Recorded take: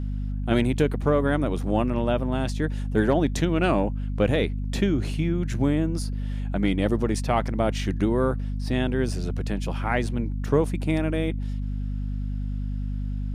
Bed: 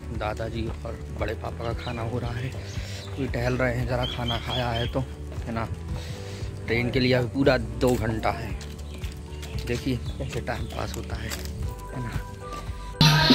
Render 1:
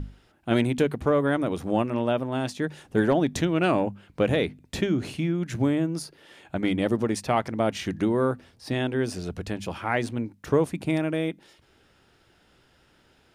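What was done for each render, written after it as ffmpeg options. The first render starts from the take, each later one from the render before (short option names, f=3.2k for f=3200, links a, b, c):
-af "bandreject=f=50:t=h:w=6,bandreject=f=100:t=h:w=6,bandreject=f=150:t=h:w=6,bandreject=f=200:t=h:w=6,bandreject=f=250:t=h:w=6"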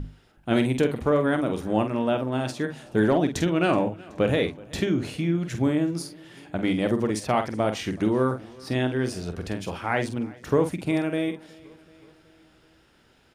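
-filter_complex "[0:a]asplit=2[a][b];[b]adelay=47,volume=-8dB[c];[a][c]amix=inputs=2:normalize=0,aecho=1:1:375|750|1125|1500:0.0668|0.0401|0.0241|0.0144"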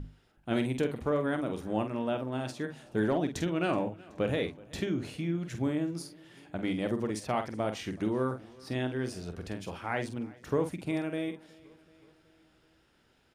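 -af "volume=-7.5dB"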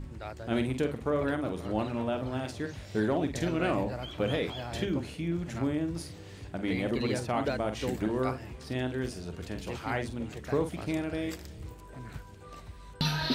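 -filter_complex "[1:a]volume=-12dB[a];[0:a][a]amix=inputs=2:normalize=0"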